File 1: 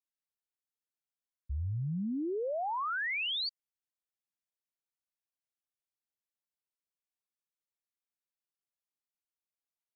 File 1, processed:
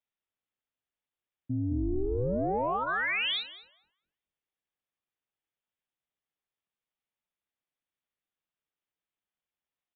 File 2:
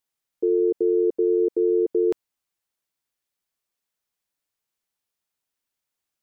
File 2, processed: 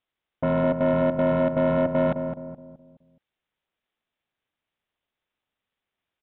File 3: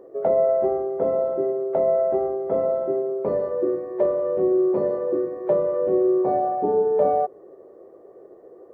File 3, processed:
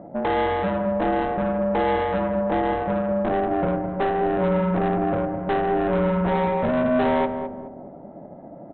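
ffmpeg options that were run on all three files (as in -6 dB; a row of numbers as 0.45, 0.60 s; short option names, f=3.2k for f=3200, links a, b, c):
-filter_complex "[0:a]bandreject=f=1.2k:w=13,aeval=exprs='val(0)*sin(2*PI*190*n/s)':c=same,aresample=8000,asoftclip=type=tanh:threshold=-26dB,aresample=44100,asplit=2[a][b];[b]adelay=211,lowpass=f=880:p=1,volume=-6dB,asplit=2[c][d];[d]adelay=211,lowpass=f=880:p=1,volume=0.44,asplit=2[e][f];[f]adelay=211,lowpass=f=880:p=1,volume=0.44,asplit=2[g][h];[h]adelay=211,lowpass=f=880:p=1,volume=0.44,asplit=2[i][j];[j]adelay=211,lowpass=f=880:p=1,volume=0.44[k];[a][c][e][g][i][k]amix=inputs=6:normalize=0,volume=7.5dB"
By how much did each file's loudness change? +4.0, -1.0, -0.5 LU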